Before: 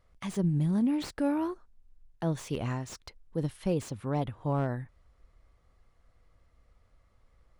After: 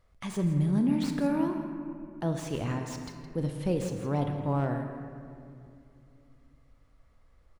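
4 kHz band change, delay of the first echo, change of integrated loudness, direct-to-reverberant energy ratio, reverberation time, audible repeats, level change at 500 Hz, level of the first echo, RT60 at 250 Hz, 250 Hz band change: +1.0 dB, 0.165 s, +1.0 dB, 4.0 dB, 2.5 s, 1, +1.5 dB, -12.5 dB, 3.5 s, +2.0 dB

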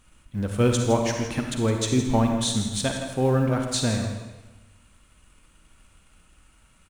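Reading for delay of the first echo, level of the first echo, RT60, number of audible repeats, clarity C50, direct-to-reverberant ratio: 0.163 s, -11.5 dB, 1.1 s, 1, 3.5 dB, 2.5 dB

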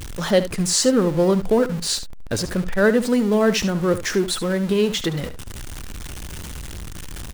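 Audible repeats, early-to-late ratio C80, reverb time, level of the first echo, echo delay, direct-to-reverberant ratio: 1, none, none, -13.0 dB, 72 ms, none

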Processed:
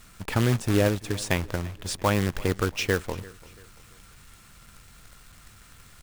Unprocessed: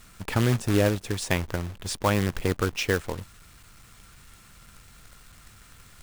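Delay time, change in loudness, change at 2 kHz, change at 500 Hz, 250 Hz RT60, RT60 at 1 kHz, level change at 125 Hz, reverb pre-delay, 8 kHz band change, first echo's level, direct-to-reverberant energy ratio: 0.34 s, 0.0 dB, 0.0 dB, 0.0 dB, none, none, 0.0 dB, none, 0.0 dB, -21.5 dB, none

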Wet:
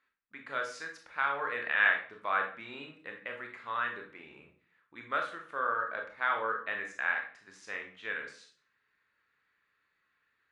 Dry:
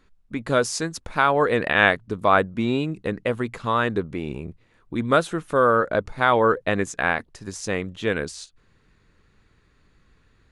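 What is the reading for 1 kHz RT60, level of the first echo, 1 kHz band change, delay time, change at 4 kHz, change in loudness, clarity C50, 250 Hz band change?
0.40 s, none, -11.5 dB, none, -13.5 dB, -10.5 dB, 7.5 dB, -26.0 dB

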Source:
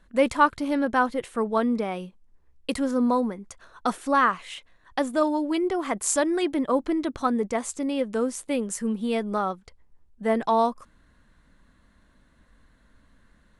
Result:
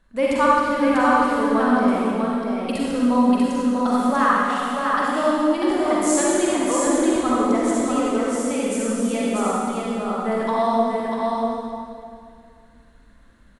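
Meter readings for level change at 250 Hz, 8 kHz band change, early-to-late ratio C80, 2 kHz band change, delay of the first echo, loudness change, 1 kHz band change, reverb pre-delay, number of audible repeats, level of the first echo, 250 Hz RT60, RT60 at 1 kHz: +7.0 dB, +5.5 dB, -4.0 dB, +5.0 dB, 0.643 s, +5.0 dB, +5.5 dB, 39 ms, 1, -3.5 dB, 2.9 s, 2.1 s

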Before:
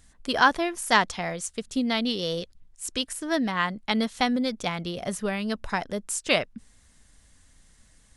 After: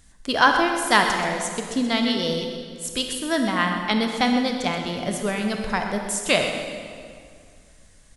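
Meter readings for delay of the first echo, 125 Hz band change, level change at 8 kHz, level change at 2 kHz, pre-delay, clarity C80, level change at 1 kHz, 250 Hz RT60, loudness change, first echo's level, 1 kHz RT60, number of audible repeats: 0.128 s, +4.0 dB, +4.0 dB, +4.0 dB, 23 ms, 5.0 dB, +4.0 dB, 2.4 s, +4.0 dB, -11.0 dB, 2.1 s, 1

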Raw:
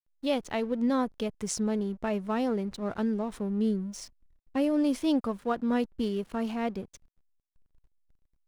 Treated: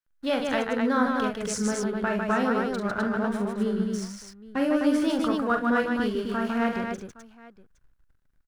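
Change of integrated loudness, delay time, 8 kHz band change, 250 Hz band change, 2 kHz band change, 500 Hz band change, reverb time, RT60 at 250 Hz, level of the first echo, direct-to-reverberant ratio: +4.0 dB, 43 ms, +3.5 dB, +3.0 dB, +12.5 dB, +4.0 dB, none, none, -5.5 dB, none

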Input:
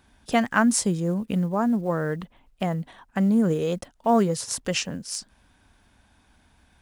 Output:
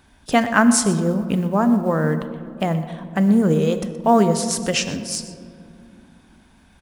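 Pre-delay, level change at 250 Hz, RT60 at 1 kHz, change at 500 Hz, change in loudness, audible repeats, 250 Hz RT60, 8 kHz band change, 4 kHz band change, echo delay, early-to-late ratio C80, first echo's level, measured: 3 ms, +5.5 dB, 2.1 s, +5.5 dB, +5.5 dB, 1, 3.9 s, +5.5 dB, +5.5 dB, 0.123 s, 11.0 dB, -16.5 dB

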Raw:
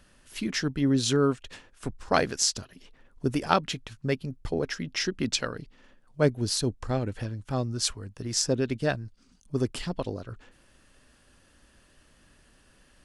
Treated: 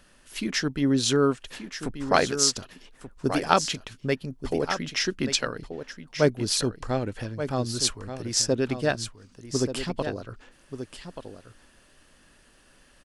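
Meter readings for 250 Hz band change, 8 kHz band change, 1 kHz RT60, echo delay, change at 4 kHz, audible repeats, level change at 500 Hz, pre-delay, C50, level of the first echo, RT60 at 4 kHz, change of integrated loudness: +1.5 dB, +3.5 dB, none, 1.182 s, +3.5 dB, 1, +2.5 dB, none, none, -10.0 dB, none, +2.5 dB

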